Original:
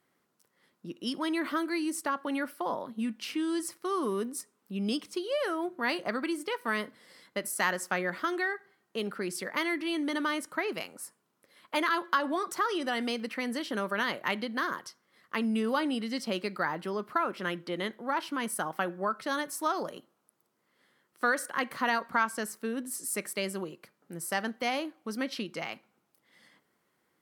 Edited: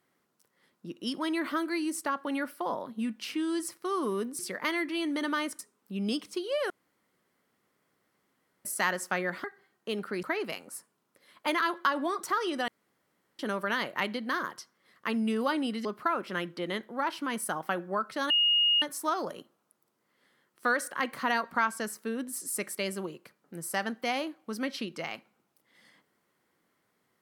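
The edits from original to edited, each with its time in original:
5.50–7.45 s: room tone
8.24–8.52 s: delete
9.31–10.51 s: move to 4.39 s
12.96–13.67 s: room tone
16.13–16.95 s: delete
19.40 s: add tone 2.86 kHz -21 dBFS 0.52 s

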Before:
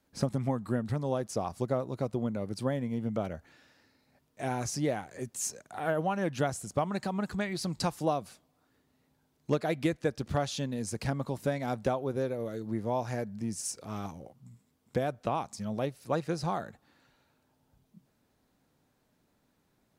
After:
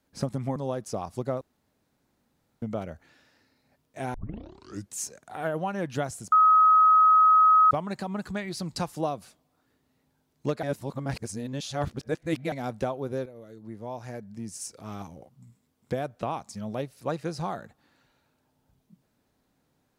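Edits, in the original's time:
0.56–0.99 s: delete
1.84–3.05 s: room tone
4.57 s: tape start 0.80 s
6.75 s: add tone 1.27 kHz -14.5 dBFS 1.39 s
9.67–11.56 s: reverse
12.30–14.16 s: fade in, from -12.5 dB

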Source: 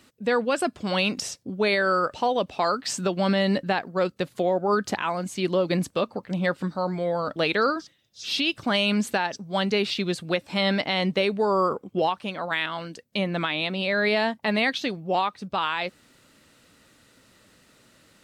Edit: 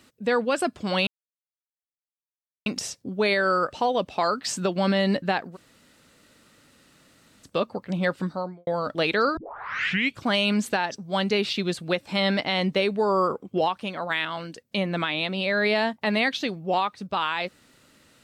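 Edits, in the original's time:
1.07 s: insert silence 1.59 s
3.95–5.87 s: room tone, crossfade 0.06 s
6.68–7.08 s: studio fade out
7.78 s: tape start 0.86 s

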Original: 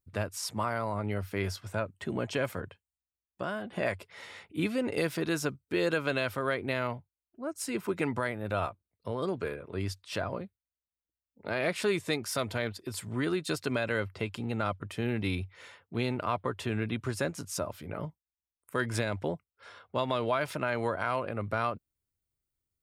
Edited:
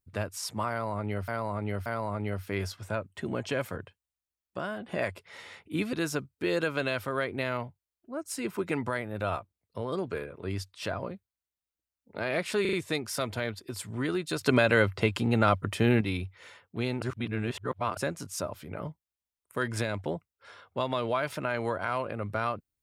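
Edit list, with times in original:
0.70–1.28 s: loop, 3 plays
4.77–5.23 s: delete
11.91 s: stutter 0.04 s, 4 plays
13.59–15.19 s: gain +8 dB
16.20–17.15 s: reverse

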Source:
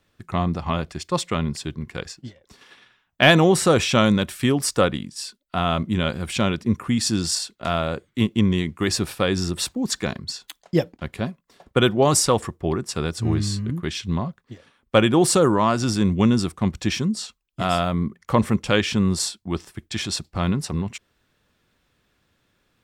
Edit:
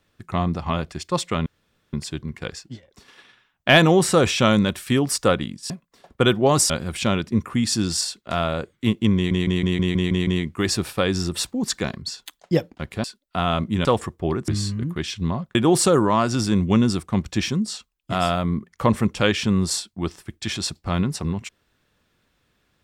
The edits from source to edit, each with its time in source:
1.46 s: insert room tone 0.47 s
5.23–6.04 s: swap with 11.26–12.26 s
8.49 s: stutter 0.16 s, 8 plays
12.89–13.35 s: delete
14.42–15.04 s: delete

